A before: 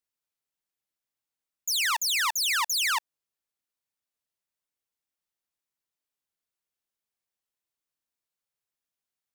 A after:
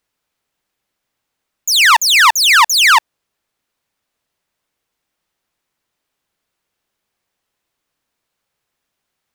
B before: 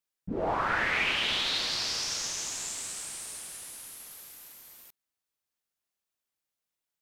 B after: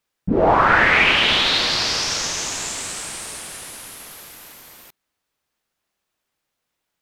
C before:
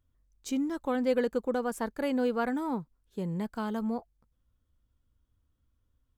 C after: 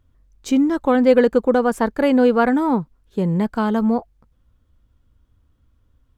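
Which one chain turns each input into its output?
high shelf 4700 Hz -10 dB; normalise peaks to -2 dBFS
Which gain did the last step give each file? +19.0, +14.5, +13.5 dB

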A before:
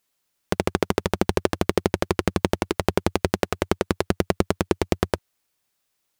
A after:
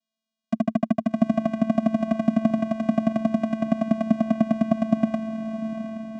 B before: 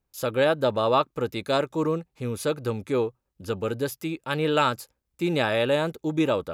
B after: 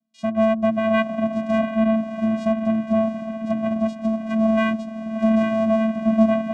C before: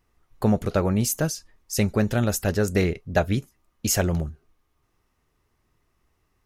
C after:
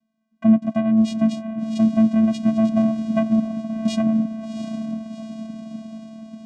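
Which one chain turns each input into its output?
envelope phaser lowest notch 270 Hz, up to 3200 Hz, full sweep at -25.5 dBFS; diffused feedback echo 0.719 s, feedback 61%, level -9 dB; vocoder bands 4, square 221 Hz; normalise peaks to -6 dBFS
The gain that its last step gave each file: +2.5, +6.0, +6.0 dB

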